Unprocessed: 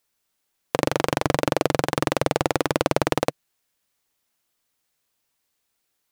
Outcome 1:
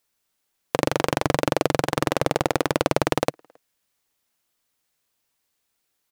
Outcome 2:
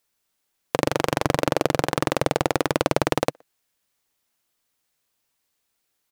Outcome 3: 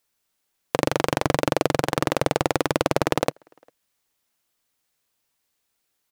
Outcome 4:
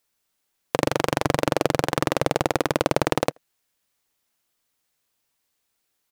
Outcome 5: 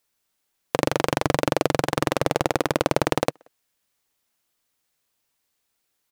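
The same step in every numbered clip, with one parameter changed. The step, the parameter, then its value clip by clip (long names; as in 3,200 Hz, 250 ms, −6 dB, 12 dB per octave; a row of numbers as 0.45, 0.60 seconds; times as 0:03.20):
far-end echo of a speakerphone, delay time: 270, 120, 400, 80, 180 milliseconds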